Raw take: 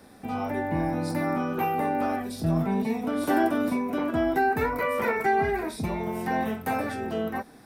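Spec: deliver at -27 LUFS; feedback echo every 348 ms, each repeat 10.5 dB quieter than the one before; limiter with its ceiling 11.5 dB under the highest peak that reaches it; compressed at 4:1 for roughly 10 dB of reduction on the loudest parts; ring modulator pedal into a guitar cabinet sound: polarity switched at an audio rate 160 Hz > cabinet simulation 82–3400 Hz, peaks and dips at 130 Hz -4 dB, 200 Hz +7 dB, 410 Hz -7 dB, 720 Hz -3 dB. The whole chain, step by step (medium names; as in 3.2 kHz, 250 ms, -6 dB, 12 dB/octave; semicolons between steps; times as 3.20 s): compression 4:1, threshold -31 dBFS; peak limiter -31.5 dBFS; feedback delay 348 ms, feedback 30%, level -10.5 dB; polarity switched at an audio rate 160 Hz; cabinet simulation 82–3400 Hz, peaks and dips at 130 Hz -4 dB, 200 Hz +7 dB, 410 Hz -7 dB, 720 Hz -3 dB; trim +13.5 dB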